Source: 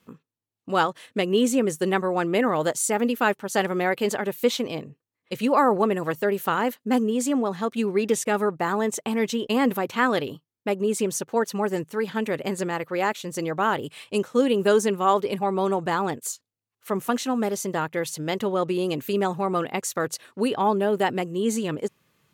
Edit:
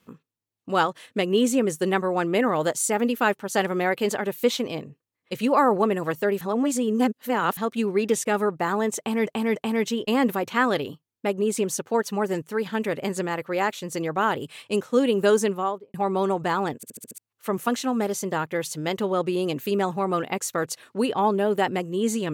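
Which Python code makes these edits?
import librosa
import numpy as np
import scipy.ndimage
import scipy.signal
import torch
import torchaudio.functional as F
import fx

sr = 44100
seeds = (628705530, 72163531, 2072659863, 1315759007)

y = fx.studio_fade_out(x, sr, start_s=14.85, length_s=0.51)
y = fx.edit(y, sr, fx.reverse_span(start_s=6.41, length_s=1.16),
    fx.repeat(start_s=8.98, length_s=0.29, count=3),
    fx.stutter_over(start_s=16.18, slice_s=0.07, count=6), tone=tone)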